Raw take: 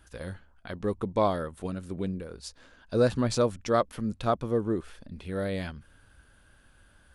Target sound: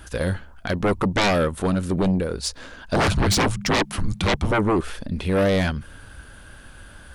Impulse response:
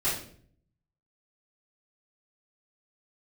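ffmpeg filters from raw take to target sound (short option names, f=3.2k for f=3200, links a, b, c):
-filter_complex "[0:a]asettb=1/sr,asplit=3[a][b][c];[a]atrim=end=2.964[d];[b]atrim=start=2.96:end=4.52,asetpts=PTS-STARTPTS,afade=t=in:d=0.004:c=qsin,afade=t=out:st=1.556:d=0.004:c=qsin,afreqshift=-210[e];[c]atrim=start=4.516[f];[d][e]acrossfade=d=0.004:c1=hsin:c2=qsin[g];[g][f]acrossfade=d=0.004:c1=qsin:c2=hsin,aeval=exprs='0.316*sin(PI/2*7.08*val(0)/0.316)':c=same,volume=-5.5dB"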